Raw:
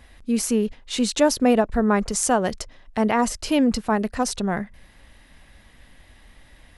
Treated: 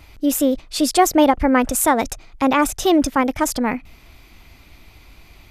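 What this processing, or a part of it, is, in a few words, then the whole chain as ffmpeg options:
nightcore: -af "asetrate=54243,aresample=44100,volume=1.58"

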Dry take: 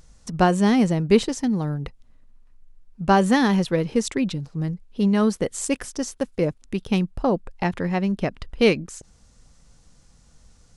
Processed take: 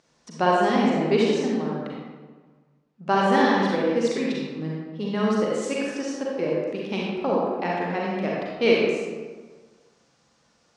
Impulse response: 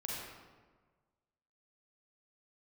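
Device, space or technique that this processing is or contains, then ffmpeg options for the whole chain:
supermarket ceiling speaker: -filter_complex "[0:a]highpass=290,lowpass=5000[s0];[1:a]atrim=start_sample=2205[s1];[s0][s1]afir=irnorm=-1:irlink=0"

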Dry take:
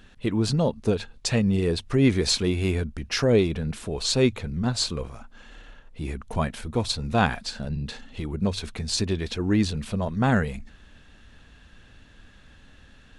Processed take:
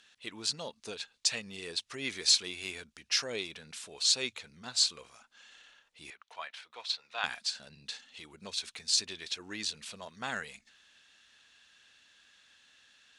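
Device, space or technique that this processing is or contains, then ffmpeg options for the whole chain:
piezo pickup straight into a mixer: -filter_complex "[0:a]lowpass=6200,aderivative,asettb=1/sr,asplit=3[s0][s1][s2];[s0]atrim=end=6.104[s3];[s1]atrim=start=6.1:end=7.24,asetpts=PTS-STARTPTS,afade=t=in:d=0.004:c=qsin,afade=t=out:st=1.136:d=0.004:c=qsin,acrossover=split=530 4400:gain=0.0631 1 0.1[s4][s5][s6];[s4][s5][s6]amix=inputs=3:normalize=0[s7];[s2]atrim=start=7.236[s8];[s3][s7]acrossfade=d=0.004:c1=hsin:c2=qsin[s9];[s9][s8]acrossfade=d=0.004:c1=qsin:c2=hsin,volume=1.78"

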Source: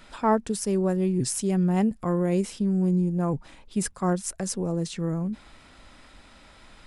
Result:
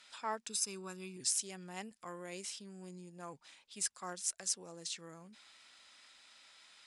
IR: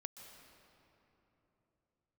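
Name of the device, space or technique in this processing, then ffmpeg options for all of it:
piezo pickup straight into a mixer: -filter_complex "[0:a]asettb=1/sr,asplit=3[s0][s1][s2];[s0]atrim=end=0.474[s3];[s1]atrim=start=0.47:end=1.17,asetpts=PTS-STARTPTS,afade=t=in:d=0.004:c=qsin,afade=t=out:st=0.696:d=0.004:c=qsin,aecho=1:1:0.8:0.7,atrim=end_sample=30870[s4];[s2]atrim=start=1.166[s5];[s3][s4]acrossfade=d=0.004:c1=hsin:c2=qsin[s6];[s6][s5]acrossfade=d=0.004:c1=qsin:c2=hsin,lowpass=6100,aderivative,volume=1.41"

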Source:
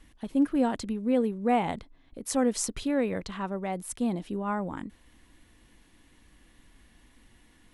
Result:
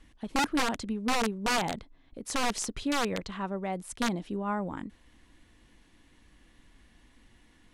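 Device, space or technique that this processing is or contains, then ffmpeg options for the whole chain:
overflowing digital effects unit: -af "aeval=exprs='(mod(10*val(0)+1,2)-1)/10':c=same,lowpass=8600,volume=0.891"

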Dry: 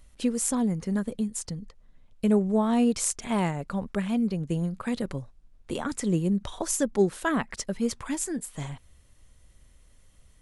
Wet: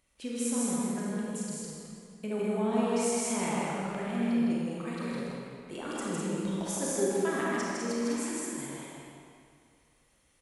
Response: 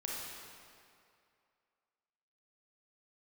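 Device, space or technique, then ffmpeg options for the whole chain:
stadium PA: -filter_complex "[0:a]highpass=f=220:p=1,equalizer=f=2300:t=o:w=0.32:g=4.5,aecho=1:1:157.4|204.1:0.794|0.562[s0];[1:a]atrim=start_sample=2205[s1];[s0][s1]afir=irnorm=-1:irlink=0,volume=0.473"

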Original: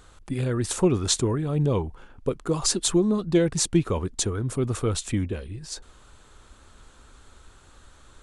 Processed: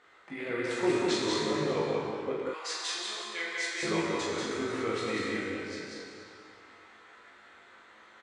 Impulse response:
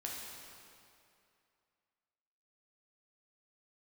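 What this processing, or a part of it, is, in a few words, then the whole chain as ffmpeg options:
station announcement: -filter_complex "[0:a]highpass=340,lowpass=3600,equalizer=f=2000:t=o:w=0.4:g=12,aecho=1:1:189.5|221.6:0.708|0.316[s0];[1:a]atrim=start_sample=2205[s1];[s0][s1]afir=irnorm=-1:irlink=0,asettb=1/sr,asplit=3[s2][s3][s4];[s2]atrim=end=2.494[s5];[s3]atrim=start=2.49:end=3.83,asetpts=PTS-STARTPTS,afade=t=in:d=0.004:c=qsin,afade=t=out:st=1.336:d=0.004:c=qsin,highpass=1200[s6];[s4]atrim=start=3.826[s7];[s5][s6]acrossfade=d=0.004:c1=hsin:c2=qsin[s8];[s8][s7]acrossfade=d=0.004:c1=qsin:c2=hsin,aecho=1:1:19|42:0.631|0.501,volume=0.631"

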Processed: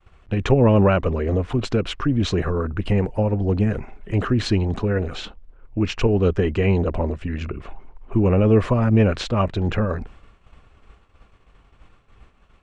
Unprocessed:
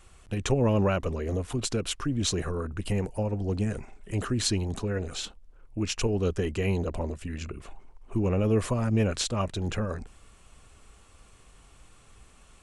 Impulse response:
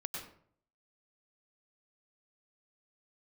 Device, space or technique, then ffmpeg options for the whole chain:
hearing-loss simulation: -af "lowpass=2700,agate=range=0.0224:threshold=0.00447:ratio=3:detection=peak,volume=2.66"

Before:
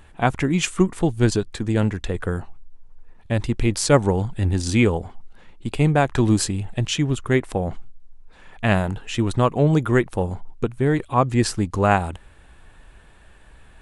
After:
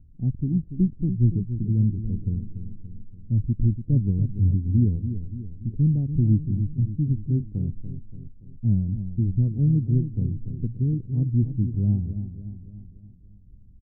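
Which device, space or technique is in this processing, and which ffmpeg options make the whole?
the neighbour's flat through the wall: -filter_complex "[0:a]lowpass=f=240:w=0.5412,lowpass=f=240:w=1.3066,equalizer=f=110:t=o:w=0.62:g=4,asplit=2[s0][s1];[s1]adelay=287,lowpass=f=2000:p=1,volume=0.316,asplit=2[s2][s3];[s3]adelay=287,lowpass=f=2000:p=1,volume=0.52,asplit=2[s4][s5];[s5]adelay=287,lowpass=f=2000:p=1,volume=0.52,asplit=2[s6][s7];[s7]adelay=287,lowpass=f=2000:p=1,volume=0.52,asplit=2[s8][s9];[s9]adelay=287,lowpass=f=2000:p=1,volume=0.52,asplit=2[s10][s11];[s11]adelay=287,lowpass=f=2000:p=1,volume=0.52[s12];[s0][s2][s4][s6][s8][s10][s12]amix=inputs=7:normalize=0,volume=0.794"

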